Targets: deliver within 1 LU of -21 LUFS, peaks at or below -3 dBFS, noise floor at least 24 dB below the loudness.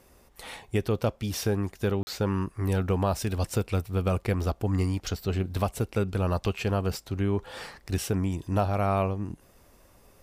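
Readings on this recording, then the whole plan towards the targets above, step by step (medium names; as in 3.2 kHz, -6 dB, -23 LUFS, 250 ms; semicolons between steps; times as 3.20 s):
dropouts 1; longest dropout 40 ms; loudness -29.0 LUFS; peak level -13.0 dBFS; loudness target -21.0 LUFS
-> interpolate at 2.03 s, 40 ms; trim +8 dB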